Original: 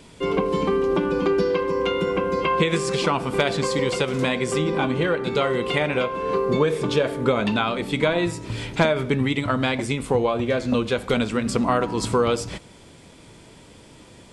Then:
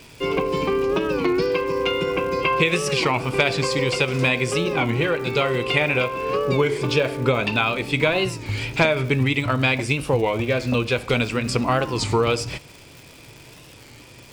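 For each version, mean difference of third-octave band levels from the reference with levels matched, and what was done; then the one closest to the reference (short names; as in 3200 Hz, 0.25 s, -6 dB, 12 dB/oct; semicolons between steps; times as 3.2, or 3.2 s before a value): 3.5 dB: thirty-one-band EQ 125 Hz +7 dB, 200 Hz -8 dB, 2500 Hz +10 dB, 5000 Hz +7 dB; crackle 280/s -34 dBFS; record warp 33 1/3 rpm, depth 160 cents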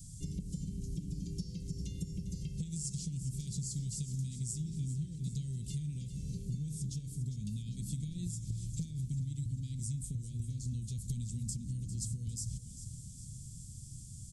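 17.0 dB: elliptic band-stop 140–6500 Hz, stop band 80 dB; compressor 6:1, threshold -41 dBFS, peak gain reduction 16.5 dB; on a send: feedback echo 0.401 s, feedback 52%, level -12 dB; on the sum: gain +5 dB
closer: first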